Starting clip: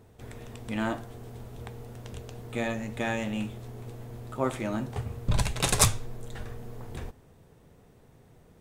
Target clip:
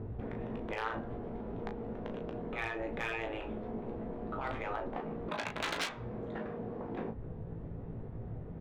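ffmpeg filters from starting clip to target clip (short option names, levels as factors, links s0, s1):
-filter_complex "[0:a]acrossover=split=790[s0][s1];[s0]alimiter=limit=0.0631:level=0:latency=1:release=469[s2];[s1]adynamicsmooth=sensitivity=2:basefreq=1500[s3];[s2][s3]amix=inputs=2:normalize=0,lowshelf=f=250:g=8,afftfilt=real='re*lt(hypot(re,im),0.0891)':imag='im*lt(hypot(re,im),0.0891)':win_size=1024:overlap=0.75,lowpass=2900,aemphasis=mode=production:type=cd,acompressor=threshold=0.00316:ratio=2,asoftclip=type=hard:threshold=0.0168,asplit=2[s4][s5];[s5]aecho=0:1:18|36:0.447|0.422[s6];[s4][s6]amix=inputs=2:normalize=0,volume=2.99"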